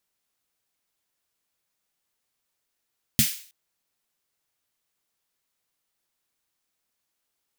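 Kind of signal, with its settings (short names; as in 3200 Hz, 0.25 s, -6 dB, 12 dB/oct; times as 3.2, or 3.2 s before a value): snare drum length 0.32 s, tones 140 Hz, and 220 Hz, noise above 2000 Hz, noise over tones -1 dB, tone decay 0.12 s, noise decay 0.46 s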